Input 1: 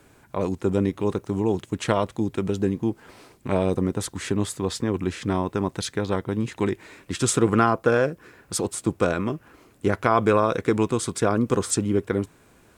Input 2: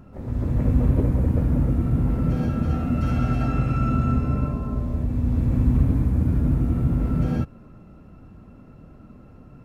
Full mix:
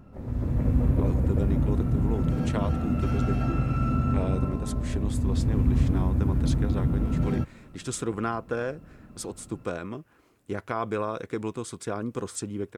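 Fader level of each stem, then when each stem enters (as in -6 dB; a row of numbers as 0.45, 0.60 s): -10.0, -3.5 dB; 0.65, 0.00 s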